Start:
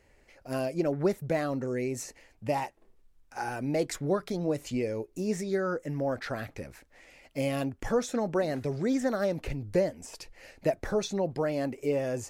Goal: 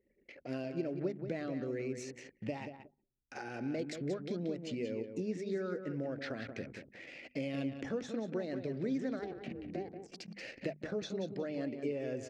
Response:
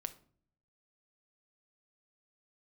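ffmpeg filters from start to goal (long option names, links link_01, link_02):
-filter_complex "[0:a]acompressor=threshold=-46dB:ratio=3,asplit=2[link_01][link_02];[link_02]aecho=0:1:182|364|546:0.398|0.107|0.029[link_03];[link_01][link_03]amix=inputs=2:normalize=0,asettb=1/sr,asplit=3[link_04][link_05][link_06];[link_04]atrim=end=9.194[link_07];[link_05]atrim=start=9.19:end=10.36,asetpts=PTS-STARTPTS,afade=type=in:duration=0.004:curve=qsin,afade=type=out:start_time=1.166:duration=0.004:curve=qsin,aeval=exprs='val(0)*sin(2*PI*190*n/s)':channel_layout=same[link_08];[link_06]atrim=start=10.356[link_09];[link_07][link_08]acrossfade=duration=0.004:curve1=hsin:curve2=qsin[link_10];[link_10][link_09]acrossfade=duration=0.004:curve1=qsin:curve2=hsin,highpass=180,lowpass=3700,equalizer=frequency=960:width_type=o:width=1.4:gain=-14.5,anlmdn=0.0000251,bandreject=frequency=50:width_type=h:width=6,bandreject=frequency=100:width_type=h:width=6,bandreject=frequency=150:width_type=h:width=6,bandreject=frequency=200:width_type=h:width=6,bandreject=frequency=250:width_type=h:width=6,volume=10.5dB"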